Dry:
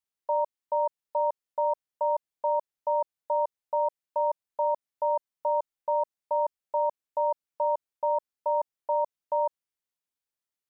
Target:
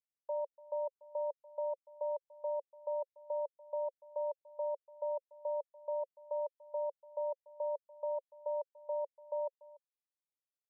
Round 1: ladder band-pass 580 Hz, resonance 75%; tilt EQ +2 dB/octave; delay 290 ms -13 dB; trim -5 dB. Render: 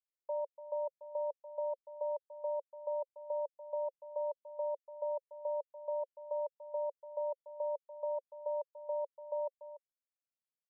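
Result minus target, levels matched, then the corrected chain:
echo-to-direct +7 dB
ladder band-pass 580 Hz, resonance 75%; tilt EQ +2 dB/octave; delay 290 ms -20 dB; trim -5 dB

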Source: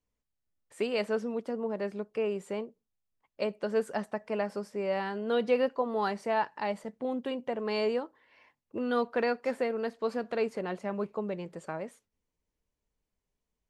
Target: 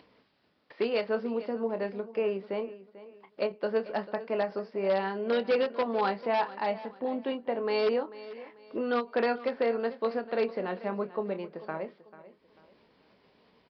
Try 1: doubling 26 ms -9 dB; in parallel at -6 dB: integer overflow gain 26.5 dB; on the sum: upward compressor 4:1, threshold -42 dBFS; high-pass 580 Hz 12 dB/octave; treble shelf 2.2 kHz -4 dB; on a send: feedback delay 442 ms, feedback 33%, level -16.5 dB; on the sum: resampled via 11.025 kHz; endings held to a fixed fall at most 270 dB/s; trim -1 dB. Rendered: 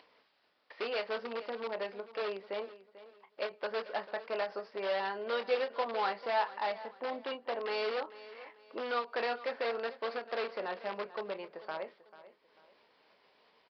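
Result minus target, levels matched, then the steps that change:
integer overflow: distortion +14 dB; 250 Hz band -8.5 dB
change: integer overflow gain 20.5 dB; change: high-pass 210 Hz 12 dB/octave

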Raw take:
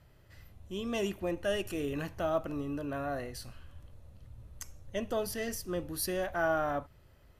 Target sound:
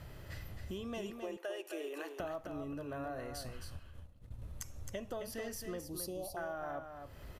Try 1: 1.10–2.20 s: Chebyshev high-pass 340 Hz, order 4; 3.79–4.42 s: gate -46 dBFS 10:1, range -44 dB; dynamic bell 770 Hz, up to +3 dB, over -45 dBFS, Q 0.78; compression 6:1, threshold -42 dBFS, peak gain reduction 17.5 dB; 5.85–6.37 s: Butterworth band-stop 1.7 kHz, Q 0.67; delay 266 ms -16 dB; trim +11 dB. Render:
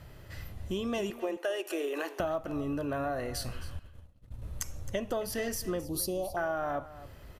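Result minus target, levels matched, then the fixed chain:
compression: peak gain reduction -9 dB; echo-to-direct -9 dB
1.10–2.20 s: Chebyshev high-pass 340 Hz, order 4; 3.79–4.42 s: gate -46 dBFS 10:1, range -44 dB; dynamic bell 770 Hz, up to +3 dB, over -45 dBFS, Q 0.78; compression 6:1, threshold -53 dBFS, peak gain reduction 27 dB; 5.85–6.37 s: Butterworth band-stop 1.7 kHz, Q 0.67; delay 266 ms -7 dB; trim +11 dB

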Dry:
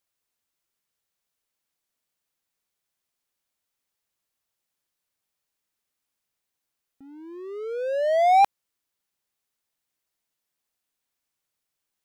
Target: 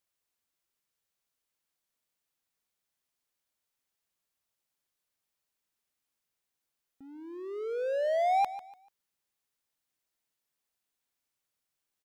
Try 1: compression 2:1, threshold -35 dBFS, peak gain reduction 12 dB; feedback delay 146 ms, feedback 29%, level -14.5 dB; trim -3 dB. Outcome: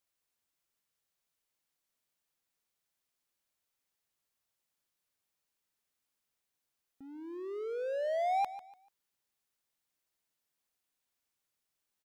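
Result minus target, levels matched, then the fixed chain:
compression: peak gain reduction +4.5 dB
compression 2:1, threshold -26 dBFS, peak gain reduction 7.5 dB; feedback delay 146 ms, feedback 29%, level -14.5 dB; trim -3 dB

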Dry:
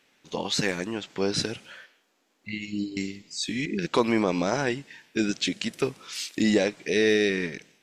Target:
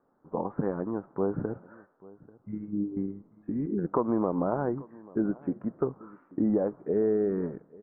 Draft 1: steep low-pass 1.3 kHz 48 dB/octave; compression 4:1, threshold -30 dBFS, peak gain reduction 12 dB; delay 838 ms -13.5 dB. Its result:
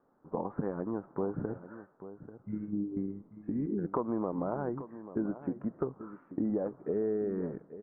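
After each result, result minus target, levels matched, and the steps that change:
compression: peak gain reduction +6 dB; echo-to-direct +8.5 dB
change: compression 4:1, threshold -22 dBFS, peak gain reduction 6 dB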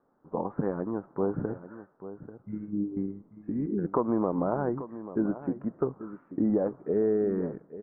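echo-to-direct +8.5 dB
change: delay 838 ms -22 dB

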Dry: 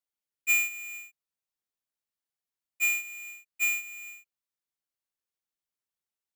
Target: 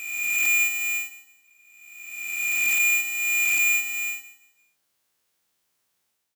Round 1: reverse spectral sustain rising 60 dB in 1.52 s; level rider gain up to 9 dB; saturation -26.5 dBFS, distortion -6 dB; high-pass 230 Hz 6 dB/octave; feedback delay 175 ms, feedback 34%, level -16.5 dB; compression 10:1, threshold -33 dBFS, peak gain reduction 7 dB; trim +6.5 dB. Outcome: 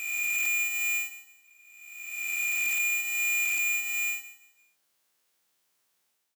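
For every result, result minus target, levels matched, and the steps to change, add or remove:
compression: peak gain reduction +7 dB; 125 Hz band -4.0 dB
remove: compression 10:1, threshold -33 dBFS, peak gain reduction 7 dB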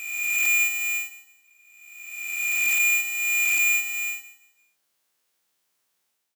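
125 Hz band -4.5 dB
change: high-pass 70 Hz 6 dB/octave

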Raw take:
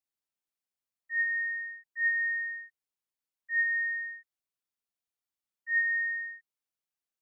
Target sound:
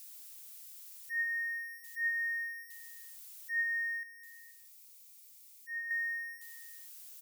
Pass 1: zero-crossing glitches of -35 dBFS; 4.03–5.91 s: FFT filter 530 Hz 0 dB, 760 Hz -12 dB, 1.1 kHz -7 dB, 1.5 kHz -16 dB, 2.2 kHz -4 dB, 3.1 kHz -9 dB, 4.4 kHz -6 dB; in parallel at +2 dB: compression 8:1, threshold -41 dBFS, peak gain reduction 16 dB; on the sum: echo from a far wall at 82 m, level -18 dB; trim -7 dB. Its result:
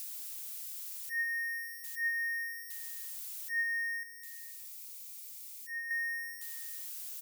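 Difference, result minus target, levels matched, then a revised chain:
zero-crossing glitches: distortion +10 dB
zero-crossing glitches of -45 dBFS; 4.03–5.91 s: FFT filter 530 Hz 0 dB, 760 Hz -12 dB, 1.1 kHz -7 dB, 1.5 kHz -16 dB, 2.2 kHz -4 dB, 3.1 kHz -9 dB, 4.4 kHz -6 dB; in parallel at +2 dB: compression 8:1, threshold -41 dBFS, peak gain reduction 16 dB; on the sum: echo from a far wall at 82 m, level -18 dB; trim -7 dB

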